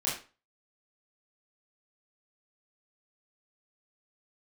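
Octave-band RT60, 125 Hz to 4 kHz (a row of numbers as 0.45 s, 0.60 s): 0.35 s, 0.35 s, 0.35 s, 0.35 s, 0.30 s, 0.30 s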